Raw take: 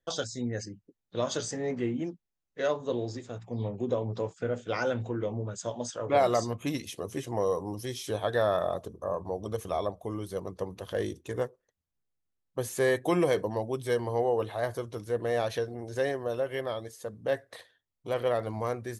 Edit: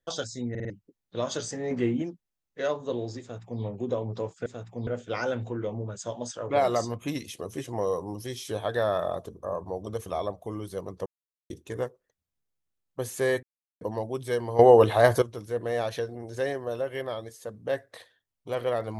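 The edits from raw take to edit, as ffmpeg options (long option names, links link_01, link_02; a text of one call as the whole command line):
ffmpeg -i in.wav -filter_complex "[0:a]asplit=15[link_01][link_02][link_03][link_04][link_05][link_06][link_07][link_08][link_09][link_10][link_11][link_12][link_13][link_14][link_15];[link_01]atrim=end=0.552[link_16];[link_02]atrim=start=0.498:end=0.552[link_17];[link_03]atrim=start=0.498:end=0.552[link_18];[link_04]atrim=start=0.498:end=0.552[link_19];[link_05]atrim=start=0.698:end=1.712[link_20];[link_06]atrim=start=1.708:end=2.022,asetpts=PTS-STARTPTS,volume=4.5dB[link_21];[link_07]atrim=start=2.018:end=4.462[link_22];[link_08]atrim=start=3.208:end=3.622[link_23];[link_09]atrim=start=4.458:end=10.65,asetpts=PTS-STARTPTS,afade=type=out:start_time=6.188:duration=0.004:curve=hsin[link_24];[link_10]atrim=start=10.65:end=11.09,asetpts=PTS-STARTPTS,volume=0[link_25];[link_11]atrim=start=11.09:end=13.02,asetpts=PTS-STARTPTS,afade=type=in:duration=0.004:curve=hsin,afade=type=out:start_time=1.926:duration=0.004:curve=hsin[link_26];[link_12]atrim=start=13.02:end=13.4,asetpts=PTS-STARTPTS,volume=0[link_27];[link_13]atrim=start=13.4:end=14.182,asetpts=PTS-STARTPTS,afade=type=in:duration=0.004:curve=hsin[link_28];[link_14]atrim=start=14.178:end=14.812,asetpts=PTS-STARTPTS,volume=12dB[link_29];[link_15]atrim=start=14.808[link_30];[link_16][link_17]acrossfade=duration=0.004:curve1=hsin:curve2=hsin[link_31];[link_31][link_18]acrossfade=duration=0.004:curve1=hsin:curve2=hsin[link_32];[link_32][link_19]acrossfade=duration=0.004:curve1=hsin:curve2=hsin[link_33];[link_33][link_20]acrossfade=duration=0.004:curve1=hsin:curve2=hsin[link_34];[link_34][link_21]acrossfade=duration=0.004:curve1=hsin:curve2=hsin[link_35];[link_35][link_22]acrossfade=duration=0.004:curve1=hsin:curve2=hsin[link_36];[link_36][link_23]acrossfade=duration=0.004:curve1=hsin:curve2=hsin[link_37];[link_24][link_25][link_26][link_27][link_28]concat=n=5:v=0:a=1[link_38];[link_37][link_38]acrossfade=duration=0.004:curve1=hsin:curve2=hsin[link_39];[link_39][link_29]acrossfade=duration=0.004:curve1=hsin:curve2=hsin[link_40];[link_40][link_30]acrossfade=duration=0.004:curve1=hsin:curve2=hsin" out.wav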